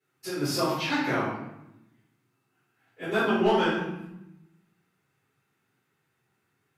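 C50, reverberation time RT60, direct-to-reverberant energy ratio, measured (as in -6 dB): 0.5 dB, 0.85 s, -12.5 dB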